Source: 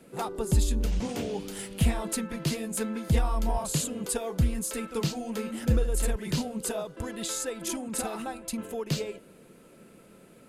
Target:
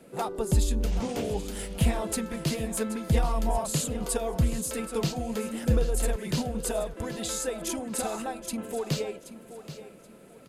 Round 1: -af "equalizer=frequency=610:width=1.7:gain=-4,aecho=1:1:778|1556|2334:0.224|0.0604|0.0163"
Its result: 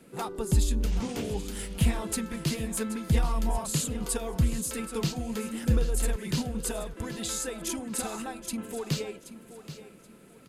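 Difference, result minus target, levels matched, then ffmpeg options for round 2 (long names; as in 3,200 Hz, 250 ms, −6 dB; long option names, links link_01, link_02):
500 Hz band −3.5 dB
-af "equalizer=frequency=610:width=1.7:gain=4,aecho=1:1:778|1556|2334:0.224|0.0604|0.0163"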